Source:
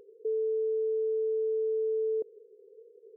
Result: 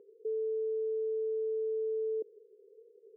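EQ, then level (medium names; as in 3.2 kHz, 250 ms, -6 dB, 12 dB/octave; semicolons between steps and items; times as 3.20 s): band-pass filter 340 Hz, Q 1.2; -2.5 dB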